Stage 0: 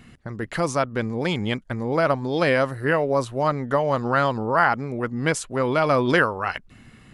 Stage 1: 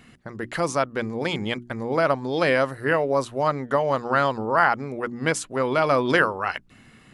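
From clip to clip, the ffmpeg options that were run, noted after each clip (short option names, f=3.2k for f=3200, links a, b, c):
-af "lowshelf=f=120:g=-8.5,bandreject=f=60:t=h:w=6,bandreject=f=120:t=h:w=6,bandreject=f=180:t=h:w=6,bandreject=f=240:t=h:w=6,bandreject=f=300:t=h:w=6,bandreject=f=360:t=h:w=6"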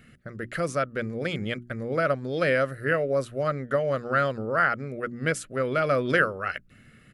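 -af "firequalizer=gain_entry='entry(140,0);entry(300,-6);entry(580,-1);entry(910,-21);entry(1300,-1);entry(3600,-7);entry(6400,-8);entry(11000,-2)':delay=0.05:min_phase=1"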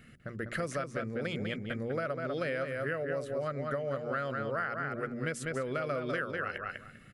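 -filter_complex "[0:a]asplit=2[a][b];[b]adelay=198,lowpass=f=4k:p=1,volume=-6dB,asplit=2[c][d];[d]adelay=198,lowpass=f=4k:p=1,volume=0.17,asplit=2[e][f];[f]adelay=198,lowpass=f=4k:p=1,volume=0.17[g];[a][c][e][g]amix=inputs=4:normalize=0,acompressor=threshold=-29dB:ratio=6,volume=-2dB"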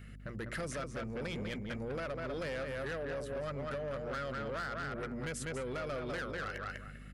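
-filter_complex "[0:a]acrossover=split=5000[a][b];[a]asoftclip=type=tanh:threshold=-35dB[c];[c][b]amix=inputs=2:normalize=0,aeval=exprs='val(0)+0.00355*(sin(2*PI*50*n/s)+sin(2*PI*2*50*n/s)/2+sin(2*PI*3*50*n/s)/3+sin(2*PI*4*50*n/s)/4+sin(2*PI*5*50*n/s)/5)':c=same"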